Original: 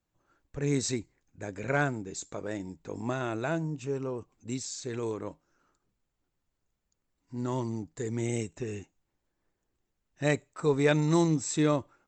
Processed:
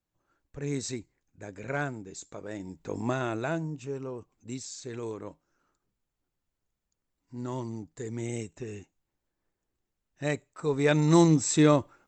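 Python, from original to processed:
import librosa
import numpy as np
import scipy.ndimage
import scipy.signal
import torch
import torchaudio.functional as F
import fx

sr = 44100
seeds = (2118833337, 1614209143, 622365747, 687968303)

y = fx.gain(x, sr, db=fx.line((2.47, -4.0), (2.92, 4.0), (3.92, -3.0), (10.65, -3.0), (11.19, 5.0)))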